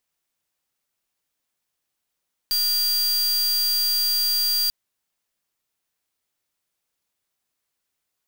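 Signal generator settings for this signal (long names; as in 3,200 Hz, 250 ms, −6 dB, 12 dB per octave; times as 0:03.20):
pulse wave 4,740 Hz, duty 43% −21.5 dBFS 2.19 s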